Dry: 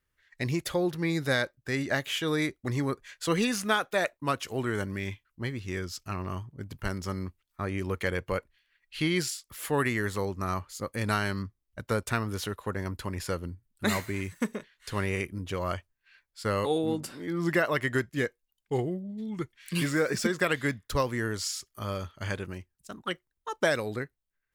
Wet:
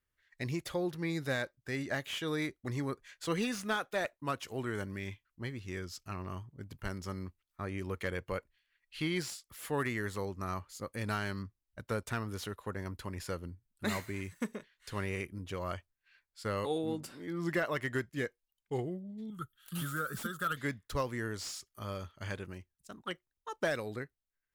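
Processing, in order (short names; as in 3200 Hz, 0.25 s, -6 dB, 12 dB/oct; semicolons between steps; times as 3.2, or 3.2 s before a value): 19.3–20.57 EQ curve 150 Hz 0 dB, 350 Hz -11 dB, 590 Hz -9 dB, 900 Hz -19 dB, 1300 Hz +11 dB, 2200 Hz -22 dB, 3200 Hz +2 dB, 5200 Hz -12 dB, 12000 Hz +13 dB; slew limiter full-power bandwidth 150 Hz; gain -6.5 dB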